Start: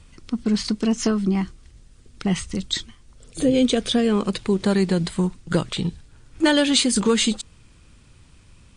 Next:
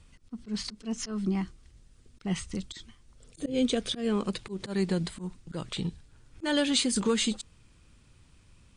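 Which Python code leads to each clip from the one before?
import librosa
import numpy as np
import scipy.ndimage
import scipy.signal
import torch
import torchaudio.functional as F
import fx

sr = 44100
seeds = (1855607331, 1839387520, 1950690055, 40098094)

y = fx.auto_swell(x, sr, attack_ms=132.0)
y = y * 10.0 ** (-7.5 / 20.0)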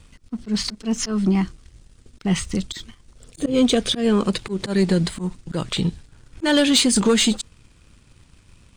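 y = fx.leveller(x, sr, passes=1)
y = y * 10.0 ** (7.0 / 20.0)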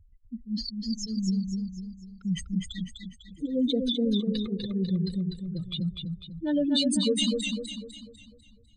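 y = fx.spec_expand(x, sr, power=3.1)
y = fx.echo_warbled(y, sr, ms=249, feedback_pct=44, rate_hz=2.8, cents=64, wet_db=-4.5)
y = y * 10.0 ** (-8.0 / 20.0)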